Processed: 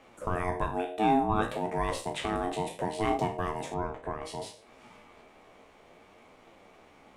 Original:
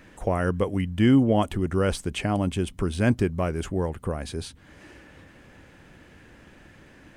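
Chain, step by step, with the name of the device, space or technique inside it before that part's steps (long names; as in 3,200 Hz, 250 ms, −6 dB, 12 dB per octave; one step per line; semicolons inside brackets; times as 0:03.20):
peak hold with a decay on every bin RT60 0.39 s
alien voice (ring modulation 540 Hz; flanger 0.63 Hz, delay 7.3 ms, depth 8.5 ms, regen +63%)
0:03.74–0:04.25: high-frequency loss of the air 110 metres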